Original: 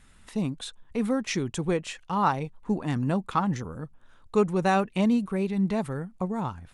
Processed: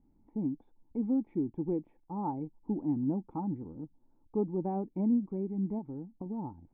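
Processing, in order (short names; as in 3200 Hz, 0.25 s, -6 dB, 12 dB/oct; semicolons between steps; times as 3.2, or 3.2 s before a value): 5.78–6.26 compressor, threshold -29 dBFS, peak gain reduction 6 dB; vocal tract filter u; gain +3 dB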